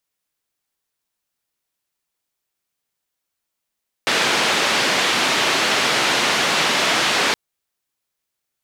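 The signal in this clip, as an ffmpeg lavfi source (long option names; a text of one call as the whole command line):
ffmpeg -f lavfi -i "anoisesrc=color=white:duration=3.27:sample_rate=44100:seed=1,highpass=frequency=200,lowpass=frequency=3600,volume=-5.9dB" out.wav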